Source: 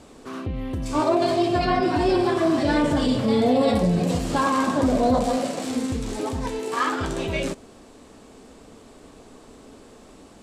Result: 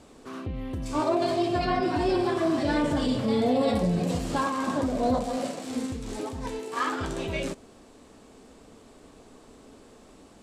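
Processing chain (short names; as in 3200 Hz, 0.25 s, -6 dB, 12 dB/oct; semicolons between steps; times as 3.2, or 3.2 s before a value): 4.38–6.76 tremolo 2.8 Hz, depth 35%; gain -4.5 dB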